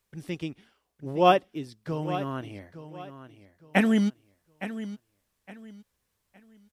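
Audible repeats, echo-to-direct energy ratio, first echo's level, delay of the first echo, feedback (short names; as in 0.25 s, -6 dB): 2, -12.5 dB, -13.0 dB, 0.863 s, 28%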